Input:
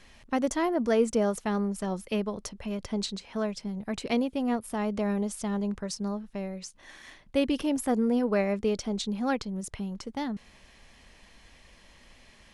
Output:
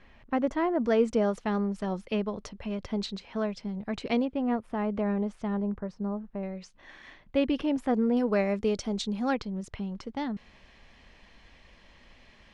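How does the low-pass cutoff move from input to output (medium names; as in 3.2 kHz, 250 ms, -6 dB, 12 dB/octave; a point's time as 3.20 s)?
2.3 kHz
from 0.82 s 4.2 kHz
from 4.25 s 2.2 kHz
from 5.62 s 1.3 kHz
from 6.43 s 3.3 kHz
from 8.17 s 7.6 kHz
from 9.34 s 4.2 kHz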